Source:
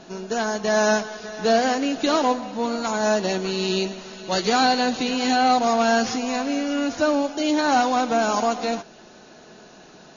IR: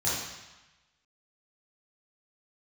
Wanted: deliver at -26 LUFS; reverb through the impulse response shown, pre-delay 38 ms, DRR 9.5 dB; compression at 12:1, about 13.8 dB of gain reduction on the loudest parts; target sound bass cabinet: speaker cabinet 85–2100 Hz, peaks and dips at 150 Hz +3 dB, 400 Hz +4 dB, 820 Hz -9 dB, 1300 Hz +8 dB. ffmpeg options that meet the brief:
-filter_complex "[0:a]acompressor=threshold=-29dB:ratio=12,asplit=2[a][b];[1:a]atrim=start_sample=2205,adelay=38[c];[b][c]afir=irnorm=-1:irlink=0,volume=-19dB[d];[a][d]amix=inputs=2:normalize=0,highpass=f=85:w=0.5412,highpass=f=85:w=1.3066,equalizer=f=150:t=q:w=4:g=3,equalizer=f=400:t=q:w=4:g=4,equalizer=f=820:t=q:w=4:g=-9,equalizer=f=1.3k:t=q:w=4:g=8,lowpass=f=2.1k:w=0.5412,lowpass=f=2.1k:w=1.3066,volume=7dB"

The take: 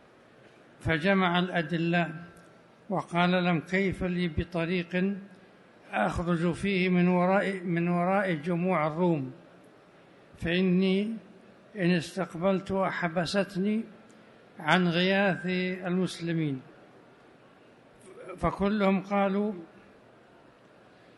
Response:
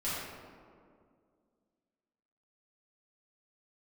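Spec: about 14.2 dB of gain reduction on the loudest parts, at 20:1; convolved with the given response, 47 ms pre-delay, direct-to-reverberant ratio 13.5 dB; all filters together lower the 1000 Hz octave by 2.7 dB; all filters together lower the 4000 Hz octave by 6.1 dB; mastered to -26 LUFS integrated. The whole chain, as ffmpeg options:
-filter_complex "[0:a]equalizer=f=1k:t=o:g=-3.5,equalizer=f=4k:t=o:g=-8,acompressor=threshold=-35dB:ratio=20,asplit=2[a][b];[1:a]atrim=start_sample=2205,adelay=47[c];[b][c]afir=irnorm=-1:irlink=0,volume=-19.5dB[d];[a][d]amix=inputs=2:normalize=0,volume=14.5dB"

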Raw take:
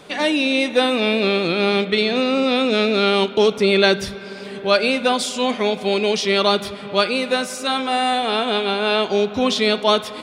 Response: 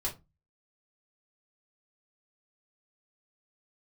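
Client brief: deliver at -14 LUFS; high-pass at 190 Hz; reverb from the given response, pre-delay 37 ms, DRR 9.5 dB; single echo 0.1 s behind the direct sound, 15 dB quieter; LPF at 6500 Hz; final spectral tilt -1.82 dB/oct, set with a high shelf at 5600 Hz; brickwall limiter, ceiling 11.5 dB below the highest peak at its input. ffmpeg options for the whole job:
-filter_complex "[0:a]highpass=190,lowpass=6.5k,highshelf=f=5.6k:g=-6,alimiter=limit=-13dB:level=0:latency=1,aecho=1:1:100:0.178,asplit=2[a][b];[1:a]atrim=start_sample=2205,adelay=37[c];[b][c]afir=irnorm=-1:irlink=0,volume=-12.5dB[d];[a][d]amix=inputs=2:normalize=0,volume=8dB"

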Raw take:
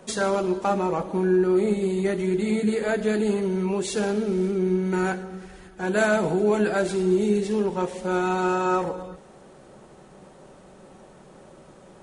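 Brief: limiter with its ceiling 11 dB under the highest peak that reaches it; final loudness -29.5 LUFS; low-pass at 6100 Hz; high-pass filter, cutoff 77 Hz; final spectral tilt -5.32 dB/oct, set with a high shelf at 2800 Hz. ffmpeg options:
-af "highpass=77,lowpass=6.1k,highshelf=f=2.8k:g=4,volume=-1.5dB,alimiter=limit=-21dB:level=0:latency=1"

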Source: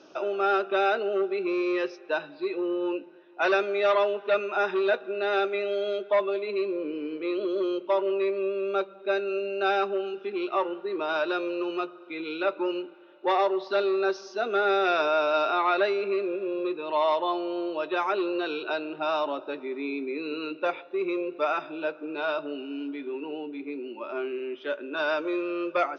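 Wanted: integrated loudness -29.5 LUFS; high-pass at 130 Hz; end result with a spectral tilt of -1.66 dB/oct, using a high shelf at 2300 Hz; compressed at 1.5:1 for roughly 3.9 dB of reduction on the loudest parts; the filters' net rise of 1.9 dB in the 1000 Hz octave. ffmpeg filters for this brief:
-af "highpass=130,equalizer=f=1k:t=o:g=4,highshelf=f=2.3k:g=-6,acompressor=threshold=-29dB:ratio=1.5,volume=0.5dB"

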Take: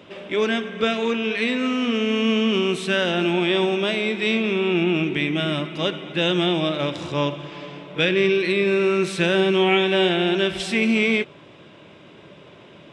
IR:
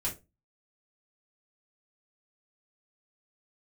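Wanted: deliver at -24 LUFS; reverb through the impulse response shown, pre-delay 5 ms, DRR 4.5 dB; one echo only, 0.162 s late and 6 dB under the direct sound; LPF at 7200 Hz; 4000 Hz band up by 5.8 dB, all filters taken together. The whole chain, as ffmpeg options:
-filter_complex "[0:a]lowpass=7.2k,equalizer=f=4k:t=o:g=8,aecho=1:1:162:0.501,asplit=2[a][b];[1:a]atrim=start_sample=2205,adelay=5[c];[b][c]afir=irnorm=-1:irlink=0,volume=-8dB[d];[a][d]amix=inputs=2:normalize=0,volume=-7dB"

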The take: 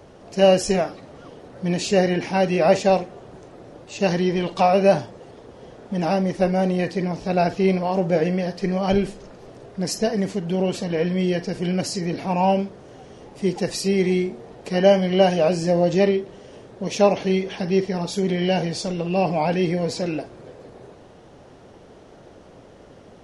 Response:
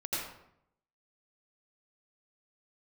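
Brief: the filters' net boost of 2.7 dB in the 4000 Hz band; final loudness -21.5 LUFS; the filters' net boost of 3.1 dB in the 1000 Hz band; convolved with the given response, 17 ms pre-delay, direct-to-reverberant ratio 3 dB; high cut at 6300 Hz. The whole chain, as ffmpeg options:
-filter_complex "[0:a]lowpass=6.3k,equalizer=f=1k:t=o:g=4.5,equalizer=f=4k:t=o:g=4.5,asplit=2[a][b];[1:a]atrim=start_sample=2205,adelay=17[c];[b][c]afir=irnorm=-1:irlink=0,volume=-8dB[d];[a][d]amix=inputs=2:normalize=0,volume=-3dB"

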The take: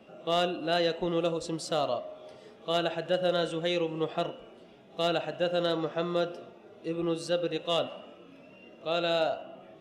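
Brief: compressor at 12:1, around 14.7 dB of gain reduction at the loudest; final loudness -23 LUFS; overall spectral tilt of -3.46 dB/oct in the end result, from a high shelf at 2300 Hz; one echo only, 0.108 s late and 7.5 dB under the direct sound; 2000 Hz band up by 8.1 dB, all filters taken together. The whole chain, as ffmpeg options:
-af "equalizer=f=2k:t=o:g=8,highshelf=f=2.3k:g=6.5,acompressor=threshold=-35dB:ratio=12,aecho=1:1:108:0.422,volume=16.5dB"

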